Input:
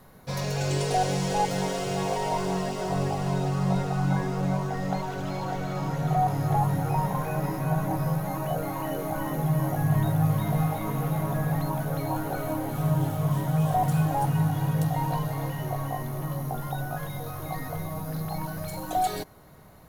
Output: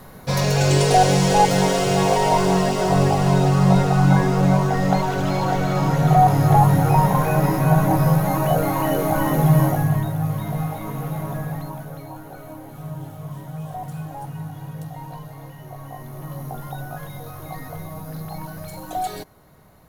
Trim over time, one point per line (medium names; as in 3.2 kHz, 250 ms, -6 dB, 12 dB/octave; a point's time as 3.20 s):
9.61 s +10 dB
10.09 s 0 dB
11.34 s 0 dB
12.15 s -8 dB
15.62 s -8 dB
16.42 s -0.5 dB